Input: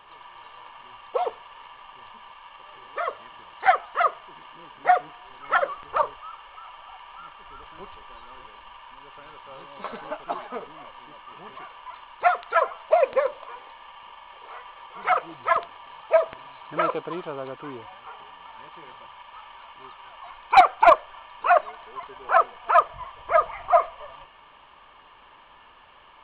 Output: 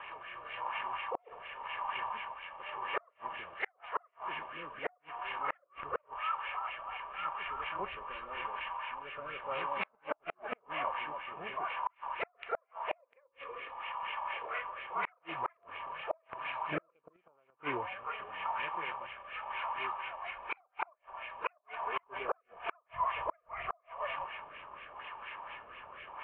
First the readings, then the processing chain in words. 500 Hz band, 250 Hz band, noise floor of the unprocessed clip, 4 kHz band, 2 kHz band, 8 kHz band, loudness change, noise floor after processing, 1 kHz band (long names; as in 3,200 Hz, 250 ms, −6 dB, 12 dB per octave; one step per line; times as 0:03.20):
−17.5 dB, −7.5 dB, −52 dBFS, −5.0 dB, −8.0 dB, can't be measured, −16.0 dB, −74 dBFS, −13.0 dB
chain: high-pass filter 76 Hz 6 dB per octave
healed spectral selection 0:13.30–0:14.01, 560–2,200 Hz after
graphic EQ with 15 bands 250 Hz −4 dB, 630 Hz +4 dB, 2,500 Hz +9 dB
downward compressor 10 to 1, threshold −26 dBFS, peak gain reduction 20.5 dB
echo ahead of the sound 33 ms −13.5 dB
auto-filter low-pass sine 4.2 Hz 930–2,300 Hz
rotating-speaker cabinet horn 0.9 Hz
gate with flip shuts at −24 dBFS, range −40 dB
level +2.5 dB